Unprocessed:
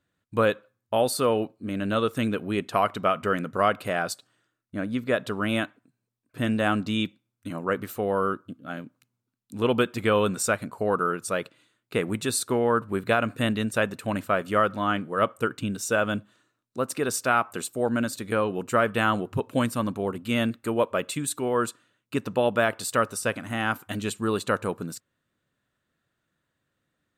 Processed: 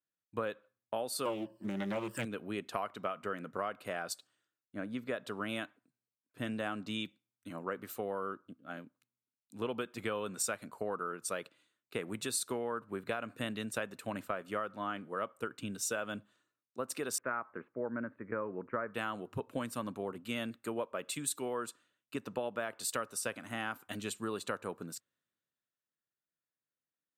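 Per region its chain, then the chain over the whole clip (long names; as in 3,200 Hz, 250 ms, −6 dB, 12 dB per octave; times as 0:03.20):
0:01.25–0:02.25: mu-law and A-law mismatch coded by mu + EQ curve with evenly spaced ripples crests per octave 1.3, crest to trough 17 dB + highs frequency-modulated by the lows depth 0.42 ms
0:17.18–0:18.94: Butterworth low-pass 2,100 Hz 48 dB per octave + notch filter 750 Hz, Q 6
whole clip: high-pass filter 230 Hz 6 dB per octave; downward compressor, threshold −28 dBFS; multiband upward and downward expander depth 40%; level −5.5 dB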